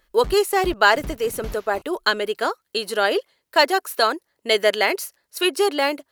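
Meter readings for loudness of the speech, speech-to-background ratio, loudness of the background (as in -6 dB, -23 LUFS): -21.0 LUFS, 18.5 dB, -39.5 LUFS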